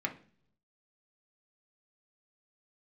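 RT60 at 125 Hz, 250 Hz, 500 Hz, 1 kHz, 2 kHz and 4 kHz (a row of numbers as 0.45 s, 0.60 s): 1.0 s, 0.80 s, 0.55 s, 0.40 s, 0.45 s, 0.50 s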